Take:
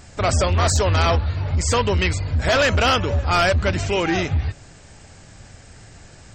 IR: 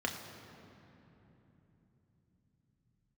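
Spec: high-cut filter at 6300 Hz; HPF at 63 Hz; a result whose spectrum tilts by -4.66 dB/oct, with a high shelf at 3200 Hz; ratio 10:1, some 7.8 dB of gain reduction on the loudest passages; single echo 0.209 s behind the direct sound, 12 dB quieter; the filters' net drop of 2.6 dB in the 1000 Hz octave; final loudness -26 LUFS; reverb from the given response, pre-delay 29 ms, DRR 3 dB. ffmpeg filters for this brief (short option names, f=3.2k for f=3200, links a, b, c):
-filter_complex "[0:a]highpass=63,lowpass=6.3k,equalizer=f=1k:t=o:g=-4.5,highshelf=f=3.2k:g=5,acompressor=threshold=-23dB:ratio=10,aecho=1:1:209:0.251,asplit=2[a][b];[1:a]atrim=start_sample=2205,adelay=29[c];[b][c]afir=irnorm=-1:irlink=0,volume=-8.5dB[d];[a][d]amix=inputs=2:normalize=0,volume=-1dB"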